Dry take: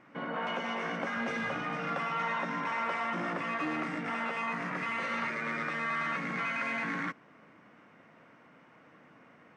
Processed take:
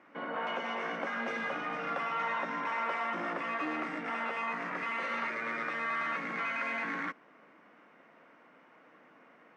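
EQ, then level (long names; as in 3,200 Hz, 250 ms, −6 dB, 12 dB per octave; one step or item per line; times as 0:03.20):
high-pass filter 280 Hz 12 dB per octave
high-shelf EQ 5,400 Hz −8.5 dB
0.0 dB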